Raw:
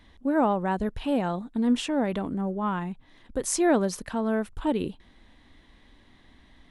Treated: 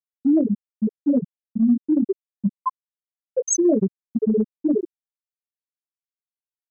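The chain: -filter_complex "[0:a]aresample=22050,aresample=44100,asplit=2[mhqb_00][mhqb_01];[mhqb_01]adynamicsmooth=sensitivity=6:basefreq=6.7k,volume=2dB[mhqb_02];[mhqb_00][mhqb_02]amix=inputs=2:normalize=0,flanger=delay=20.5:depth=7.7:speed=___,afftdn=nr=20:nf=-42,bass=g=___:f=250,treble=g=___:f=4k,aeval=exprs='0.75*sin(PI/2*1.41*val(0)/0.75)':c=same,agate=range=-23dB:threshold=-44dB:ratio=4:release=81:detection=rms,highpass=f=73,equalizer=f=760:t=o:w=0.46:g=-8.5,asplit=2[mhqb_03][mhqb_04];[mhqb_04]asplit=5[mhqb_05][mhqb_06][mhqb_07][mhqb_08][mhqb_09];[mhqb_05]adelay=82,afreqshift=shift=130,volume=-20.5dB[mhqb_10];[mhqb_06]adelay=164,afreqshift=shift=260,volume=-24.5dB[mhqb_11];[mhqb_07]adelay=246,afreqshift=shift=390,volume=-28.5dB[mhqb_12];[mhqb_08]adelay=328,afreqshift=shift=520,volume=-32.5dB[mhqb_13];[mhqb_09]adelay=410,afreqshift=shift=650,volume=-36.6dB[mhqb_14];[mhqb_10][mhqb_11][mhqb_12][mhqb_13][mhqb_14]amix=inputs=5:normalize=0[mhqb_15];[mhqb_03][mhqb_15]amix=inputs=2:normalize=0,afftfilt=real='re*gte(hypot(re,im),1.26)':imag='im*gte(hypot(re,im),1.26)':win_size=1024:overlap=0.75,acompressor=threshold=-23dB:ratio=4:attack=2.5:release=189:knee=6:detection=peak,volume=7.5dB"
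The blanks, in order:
1.9, -4, 14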